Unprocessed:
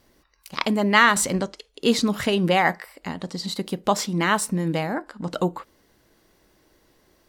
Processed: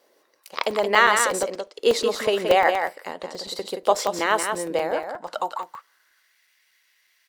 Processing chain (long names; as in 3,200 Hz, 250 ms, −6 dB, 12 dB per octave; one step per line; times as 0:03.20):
single-tap delay 176 ms −6 dB
high-pass filter sweep 490 Hz → 2,100 Hz, 0:04.90–0:06.42
regular buffer underruns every 0.12 s, samples 128, zero, from 0:00.35
level −2 dB